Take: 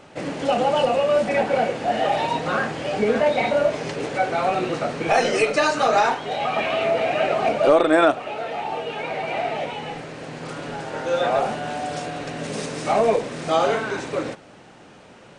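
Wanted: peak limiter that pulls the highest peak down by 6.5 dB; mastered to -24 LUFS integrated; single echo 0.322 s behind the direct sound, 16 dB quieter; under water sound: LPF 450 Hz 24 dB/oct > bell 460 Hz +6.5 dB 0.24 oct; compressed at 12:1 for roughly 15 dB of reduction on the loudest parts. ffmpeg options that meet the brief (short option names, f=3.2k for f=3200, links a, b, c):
-af "acompressor=threshold=-27dB:ratio=12,alimiter=level_in=0.5dB:limit=-24dB:level=0:latency=1,volume=-0.5dB,lowpass=f=450:w=0.5412,lowpass=f=450:w=1.3066,equalizer=f=460:t=o:w=0.24:g=6.5,aecho=1:1:322:0.158,volume=14dB"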